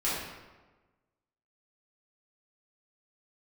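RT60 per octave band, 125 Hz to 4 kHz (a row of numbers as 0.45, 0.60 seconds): 1.4, 1.3, 1.3, 1.2, 1.0, 0.80 seconds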